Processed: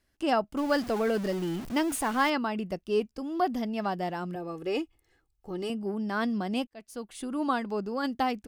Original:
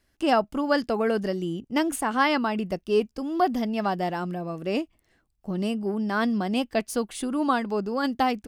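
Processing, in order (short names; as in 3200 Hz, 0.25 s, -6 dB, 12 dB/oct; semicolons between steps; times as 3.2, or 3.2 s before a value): 0.57–2.3 zero-crossing step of -30 dBFS; 4.35–5.7 comb 2.4 ms, depth 69%; 6.67–7.4 fade in; gain -4.5 dB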